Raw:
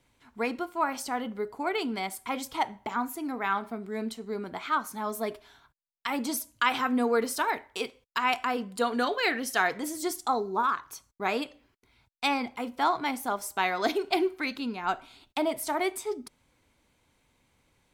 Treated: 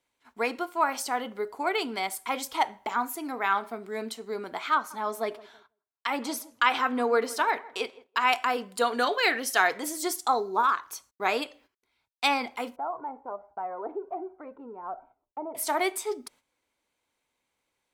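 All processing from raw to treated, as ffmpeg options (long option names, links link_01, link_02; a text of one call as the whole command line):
ffmpeg -i in.wav -filter_complex "[0:a]asettb=1/sr,asplit=3[link_01][link_02][link_03];[link_01]atrim=end=4.744[link_04];[link_02]atrim=start=4.74:end=8.21,asetpts=PTS-STARTPTS,afade=type=in:duration=0.004:curve=qsin,afade=type=out:start_time=3.466:duration=0.004:curve=qsin,highpass=72,highshelf=frequency=6500:gain=-10.5,asplit=2[link_05][link_06];[link_06]adelay=164,lowpass=frequency=1200:poles=1,volume=-19dB,asplit=2[link_07][link_08];[link_08]adelay=164,lowpass=frequency=1200:poles=1,volume=0.34,asplit=2[link_09][link_10];[link_10]adelay=164,lowpass=frequency=1200:poles=1,volume=0.34[link_11];[link_05][link_07][link_09][link_11]amix=inputs=4:normalize=0,atrim=end_sample=153027[link_12];[link_03]atrim=start=8.206[link_13];[link_04][link_12]acrossfade=duration=0.004:curve1=hsin:curve2=qsin[link_14];[link_14][link_13]acrossfade=duration=0.004:curve1=qsin:curve2=hsin,asettb=1/sr,asplit=3[link_15][link_16][link_17];[link_15]atrim=end=12.764[link_18];[link_16]atrim=start=12.76:end=15.55,asetpts=PTS-STARTPTS,afade=type=in:duration=0.004:curve=qsin,afade=type=out:start_time=2.786:duration=0.004:curve=qsin,lowpass=frequency=1000:width=0.5412,lowpass=frequency=1000:width=1.3066,flanger=delay=1.3:depth=1:regen=28:speed=1.3:shape=sinusoidal,acompressor=threshold=-38dB:ratio=1.5:attack=3.2:release=140:knee=1:detection=peak[link_19];[link_17]atrim=start=15.546[link_20];[link_18][link_19]acrossfade=duration=0.004:curve1=hsin:curve2=qsin[link_21];[link_21][link_20]acrossfade=duration=0.004:curve1=qsin:curve2=hsin,agate=range=-12dB:threshold=-57dB:ratio=16:detection=peak,bass=frequency=250:gain=-14,treble=frequency=4000:gain=1,volume=3dB" out.wav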